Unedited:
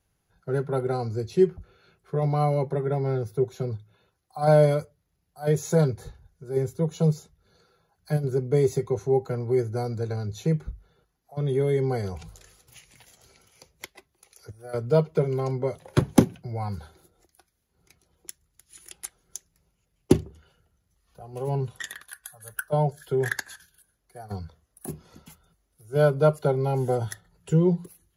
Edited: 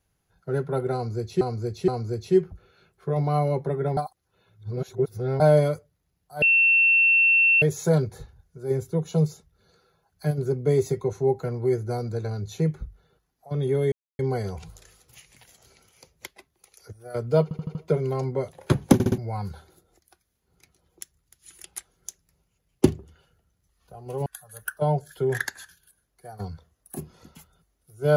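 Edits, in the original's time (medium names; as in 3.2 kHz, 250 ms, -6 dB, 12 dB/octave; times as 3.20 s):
0.94–1.41 s: loop, 3 plays
3.03–4.46 s: reverse
5.48 s: add tone 2.7 kHz -15 dBFS 1.20 s
11.78 s: insert silence 0.27 s
15.02 s: stutter 0.08 s, 5 plays
16.21 s: stutter in place 0.06 s, 4 plays
21.53–22.17 s: delete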